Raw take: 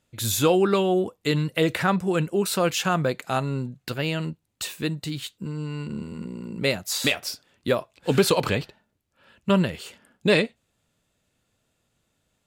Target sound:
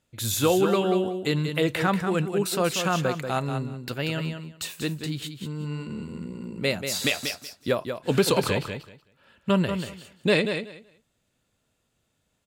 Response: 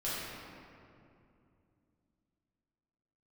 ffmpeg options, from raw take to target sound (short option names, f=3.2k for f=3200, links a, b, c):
-af "aecho=1:1:187|374|561:0.422|0.0717|0.0122,volume=-2dB"